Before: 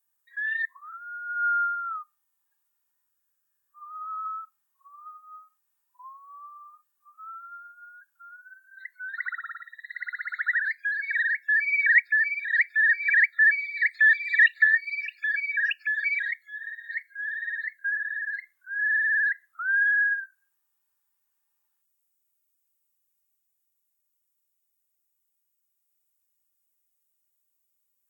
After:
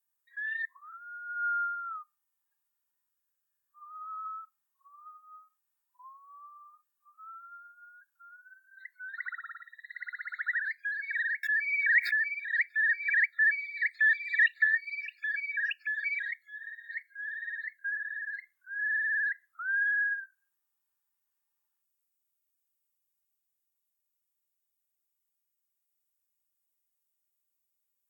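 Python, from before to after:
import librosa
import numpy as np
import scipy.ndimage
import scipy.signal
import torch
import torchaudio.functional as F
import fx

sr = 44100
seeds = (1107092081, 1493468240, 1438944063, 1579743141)

y = fx.pre_swell(x, sr, db_per_s=79.0, at=(11.43, 12.26))
y = F.gain(torch.from_numpy(y), -6.0).numpy()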